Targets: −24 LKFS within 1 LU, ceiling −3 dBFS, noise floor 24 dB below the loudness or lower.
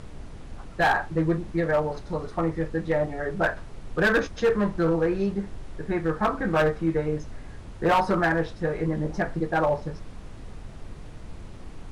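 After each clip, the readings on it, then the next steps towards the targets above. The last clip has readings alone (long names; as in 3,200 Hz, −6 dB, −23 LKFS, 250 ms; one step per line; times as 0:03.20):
share of clipped samples 0.9%; peaks flattened at −16.0 dBFS; background noise floor −42 dBFS; target noise floor −50 dBFS; integrated loudness −25.5 LKFS; sample peak −16.0 dBFS; target loudness −24.0 LKFS
→ clipped peaks rebuilt −16 dBFS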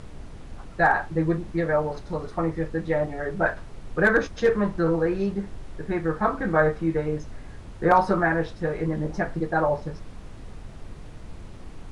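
share of clipped samples 0.0%; background noise floor −42 dBFS; target noise floor −49 dBFS
→ noise reduction from a noise print 7 dB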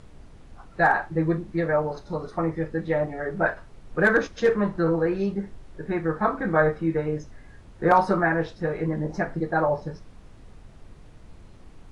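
background noise floor −48 dBFS; target noise floor −49 dBFS
→ noise reduction from a noise print 6 dB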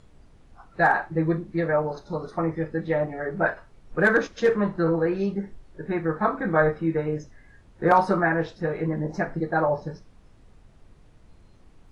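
background noise floor −54 dBFS; integrated loudness −25.0 LKFS; sample peak −7.0 dBFS; target loudness −24.0 LKFS
→ level +1 dB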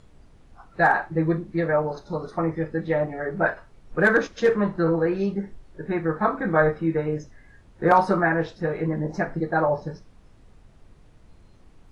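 integrated loudness −24.0 LKFS; sample peak −6.0 dBFS; background noise floor −53 dBFS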